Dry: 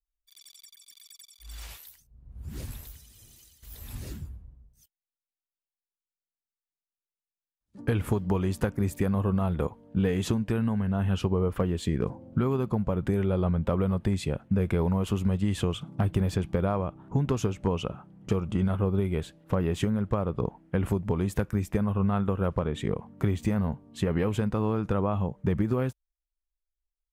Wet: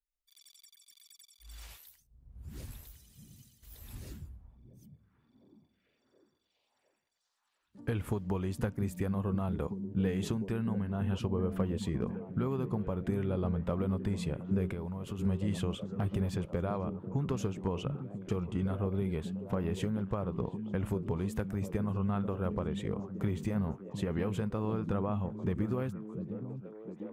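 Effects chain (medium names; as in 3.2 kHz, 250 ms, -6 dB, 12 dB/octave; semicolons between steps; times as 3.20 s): repeats whose band climbs or falls 703 ms, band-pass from 170 Hz, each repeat 0.7 oct, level -4 dB; 14.70–15.19 s: compression 6:1, threshold -28 dBFS, peak gain reduction 8 dB; trim -7 dB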